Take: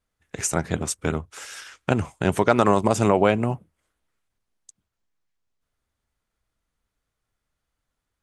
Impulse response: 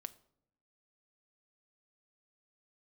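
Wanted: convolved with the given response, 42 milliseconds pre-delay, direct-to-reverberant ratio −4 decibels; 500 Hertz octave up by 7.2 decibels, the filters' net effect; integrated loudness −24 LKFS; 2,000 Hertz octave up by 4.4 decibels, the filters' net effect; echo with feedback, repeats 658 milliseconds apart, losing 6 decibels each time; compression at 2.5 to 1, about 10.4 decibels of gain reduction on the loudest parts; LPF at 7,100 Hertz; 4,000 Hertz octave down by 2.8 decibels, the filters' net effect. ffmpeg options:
-filter_complex "[0:a]lowpass=7100,equalizer=frequency=500:width_type=o:gain=8.5,equalizer=frequency=2000:width_type=o:gain=7,equalizer=frequency=4000:width_type=o:gain=-6.5,acompressor=threshold=-23dB:ratio=2.5,aecho=1:1:658|1316|1974|2632|3290|3948:0.501|0.251|0.125|0.0626|0.0313|0.0157,asplit=2[link_01][link_02];[1:a]atrim=start_sample=2205,adelay=42[link_03];[link_02][link_03]afir=irnorm=-1:irlink=0,volume=8dB[link_04];[link_01][link_04]amix=inputs=2:normalize=0,volume=-2.5dB"

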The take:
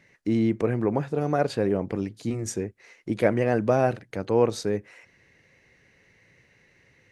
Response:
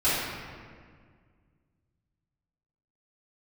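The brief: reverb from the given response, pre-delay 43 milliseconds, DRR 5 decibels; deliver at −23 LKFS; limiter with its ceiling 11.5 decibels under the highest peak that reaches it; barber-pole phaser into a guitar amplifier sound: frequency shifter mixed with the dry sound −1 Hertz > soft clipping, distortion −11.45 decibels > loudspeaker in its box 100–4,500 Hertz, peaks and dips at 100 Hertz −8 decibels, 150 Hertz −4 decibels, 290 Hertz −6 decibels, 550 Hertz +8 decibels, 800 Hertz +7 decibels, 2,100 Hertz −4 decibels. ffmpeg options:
-filter_complex "[0:a]alimiter=limit=-19dB:level=0:latency=1,asplit=2[link_01][link_02];[1:a]atrim=start_sample=2205,adelay=43[link_03];[link_02][link_03]afir=irnorm=-1:irlink=0,volume=-20dB[link_04];[link_01][link_04]amix=inputs=2:normalize=0,asplit=2[link_05][link_06];[link_06]afreqshift=-1[link_07];[link_05][link_07]amix=inputs=2:normalize=1,asoftclip=threshold=-29dB,highpass=100,equalizer=frequency=100:width_type=q:width=4:gain=-8,equalizer=frequency=150:width_type=q:width=4:gain=-4,equalizer=frequency=290:width_type=q:width=4:gain=-6,equalizer=frequency=550:width_type=q:width=4:gain=8,equalizer=frequency=800:width_type=q:width=4:gain=7,equalizer=frequency=2100:width_type=q:width=4:gain=-4,lowpass=frequency=4500:width=0.5412,lowpass=frequency=4500:width=1.3066,volume=12dB"

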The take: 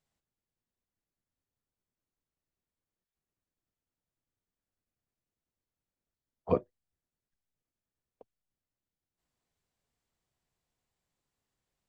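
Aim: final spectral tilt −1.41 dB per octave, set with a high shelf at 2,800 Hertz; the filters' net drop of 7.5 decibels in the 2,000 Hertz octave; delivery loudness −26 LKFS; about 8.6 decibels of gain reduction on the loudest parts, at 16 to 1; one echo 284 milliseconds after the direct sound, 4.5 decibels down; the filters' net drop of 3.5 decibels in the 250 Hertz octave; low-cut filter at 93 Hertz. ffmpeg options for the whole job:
ffmpeg -i in.wav -af "highpass=93,equalizer=frequency=250:width_type=o:gain=-4.5,equalizer=frequency=2000:width_type=o:gain=-6,highshelf=frequency=2800:gain=-7.5,acompressor=threshold=-31dB:ratio=16,aecho=1:1:284:0.596,volume=16.5dB" out.wav

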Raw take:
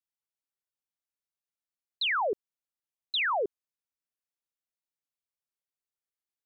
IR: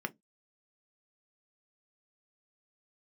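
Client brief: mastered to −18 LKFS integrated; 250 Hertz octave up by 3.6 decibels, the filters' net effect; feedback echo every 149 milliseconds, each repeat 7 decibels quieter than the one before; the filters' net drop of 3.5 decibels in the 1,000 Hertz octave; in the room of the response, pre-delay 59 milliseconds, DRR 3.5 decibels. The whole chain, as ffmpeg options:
-filter_complex "[0:a]equalizer=frequency=250:width_type=o:gain=7.5,equalizer=frequency=1000:width_type=o:gain=-5,aecho=1:1:149|298|447|596|745:0.447|0.201|0.0905|0.0407|0.0183,asplit=2[link_01][link_02];[1:a]atrim=start_sample=2205,adelay=59[link_03];[link_02][link_03]afir=irnorm=-1:irlink=0,volume=-6.5dB[link_04];[link_01][link_04]amix=inputs=2:normalize=0,volume=11dB"

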